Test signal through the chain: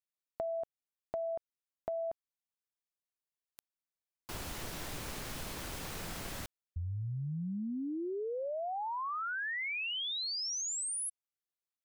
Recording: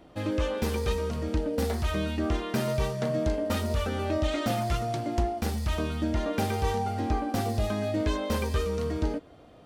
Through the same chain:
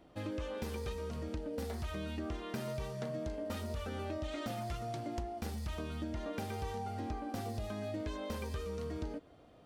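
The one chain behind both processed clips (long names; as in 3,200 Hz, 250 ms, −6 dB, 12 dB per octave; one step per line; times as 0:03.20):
downward compressor 6 to 1, threshold −28 dBFS
level −7.5 dB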